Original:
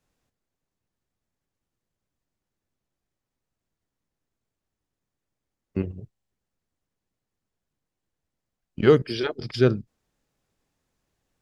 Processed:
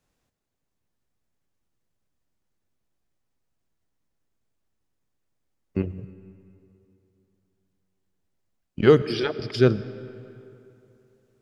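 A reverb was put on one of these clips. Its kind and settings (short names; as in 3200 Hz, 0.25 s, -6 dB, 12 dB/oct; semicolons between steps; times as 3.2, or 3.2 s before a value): digital reverb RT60 2.9 s, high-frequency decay 0.65×, pre-delay 50 ms, DRR 15 dB; gain +1 dB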